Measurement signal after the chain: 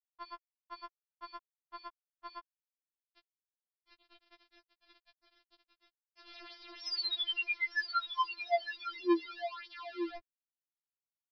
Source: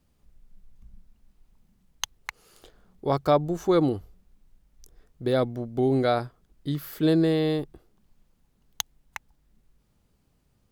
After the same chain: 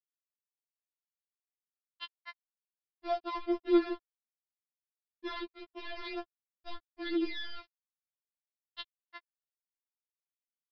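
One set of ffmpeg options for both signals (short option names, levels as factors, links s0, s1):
-af "aeval=exprs='val(0)*gte(abs(val(0)),0.0562)':c=same,aresample=11025,aresample=44100,afftfilt=real='re*4*eq(mod(b,16),0)':imag='im*4*eq(mod(b,16),0)':win_size=2048:overlap=0.75,volume=0.473"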